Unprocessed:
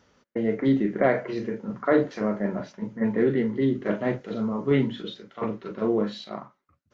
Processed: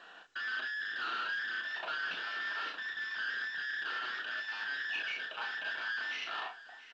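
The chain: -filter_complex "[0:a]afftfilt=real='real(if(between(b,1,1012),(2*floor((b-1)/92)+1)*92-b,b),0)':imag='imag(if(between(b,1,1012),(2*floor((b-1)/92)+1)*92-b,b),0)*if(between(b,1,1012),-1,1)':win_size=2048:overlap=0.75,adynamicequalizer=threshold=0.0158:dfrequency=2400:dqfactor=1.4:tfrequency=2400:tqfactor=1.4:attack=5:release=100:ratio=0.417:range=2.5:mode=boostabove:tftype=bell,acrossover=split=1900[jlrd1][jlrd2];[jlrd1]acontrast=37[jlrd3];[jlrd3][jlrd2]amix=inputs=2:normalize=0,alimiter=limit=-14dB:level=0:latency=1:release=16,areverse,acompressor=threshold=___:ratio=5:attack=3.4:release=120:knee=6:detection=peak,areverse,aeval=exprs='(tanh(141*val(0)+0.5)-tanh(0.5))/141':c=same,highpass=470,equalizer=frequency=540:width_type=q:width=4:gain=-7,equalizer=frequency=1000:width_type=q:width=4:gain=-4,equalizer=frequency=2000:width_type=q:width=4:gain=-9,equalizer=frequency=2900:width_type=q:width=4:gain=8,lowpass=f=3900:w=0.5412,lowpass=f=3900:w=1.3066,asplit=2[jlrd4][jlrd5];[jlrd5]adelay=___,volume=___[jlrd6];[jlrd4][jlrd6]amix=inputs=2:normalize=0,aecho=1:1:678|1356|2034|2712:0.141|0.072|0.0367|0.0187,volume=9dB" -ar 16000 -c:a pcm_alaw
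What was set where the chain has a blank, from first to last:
-32dB, 32, -6dB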